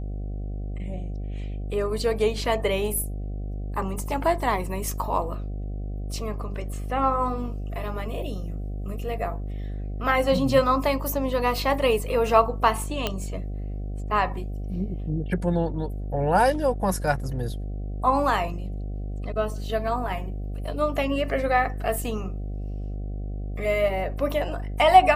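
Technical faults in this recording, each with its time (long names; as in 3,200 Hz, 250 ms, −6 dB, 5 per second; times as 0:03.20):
mains buzz 50 Hz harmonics 15 −31 dBFS
0:13.07: click −10 dBFS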